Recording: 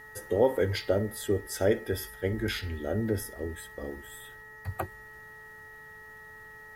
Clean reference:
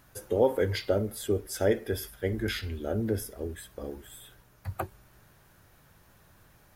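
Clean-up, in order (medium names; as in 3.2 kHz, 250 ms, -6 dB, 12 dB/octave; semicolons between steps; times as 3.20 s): de-hum 433.7 Hz, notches 4; band-stop 1.9 kHz, Q 30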